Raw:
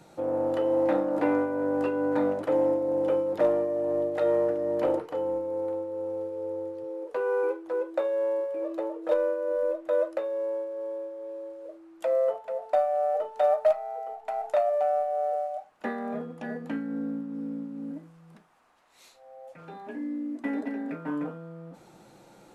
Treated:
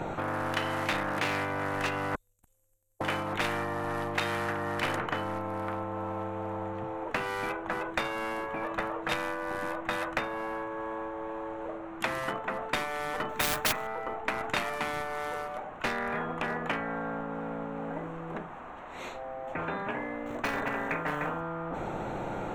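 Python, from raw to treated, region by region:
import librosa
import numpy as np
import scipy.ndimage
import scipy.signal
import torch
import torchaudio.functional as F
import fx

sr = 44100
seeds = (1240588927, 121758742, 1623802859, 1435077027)

y = fx.chain(x, sr, fx.cheby2_bandstop(low_hz=140.0, high_hz=1800.0, order=4, stop_db=80),
    fx.notch_comb(f0_hz=800.0),
    fx.tube_stage(drive_db=42.0, bias=0.55), at=(2.15, 3.01))
y = fx.chain(y, sr, fx.notch(hz=3000.0, q=6.2),
    fx.quant_companded(bits=6), at=(13.29, 13.87))
y = fx.chain(y, sr, fx.high_shelf(hz=3100.0, db=-3.0),
    fx.quant_float(bits=4),
    fx.room_flutter(wall_m=7.9, rt60_s=0.22), at=(20.26, 21.41))
y = fx.wiener(y, sr, points=9)
y = fx.tilt_eq(y, sr, slope=-1.5)
y = fx.spectral_comp(y, sr, ratio=10.0)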